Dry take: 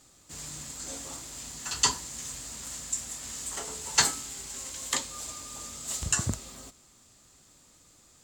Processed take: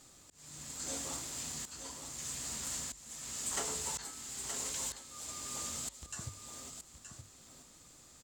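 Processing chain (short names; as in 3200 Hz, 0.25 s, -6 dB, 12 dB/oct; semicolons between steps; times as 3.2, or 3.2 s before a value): auto swell 0.657 s; notches 50/100 Hz; echo 0.922 s -8 dB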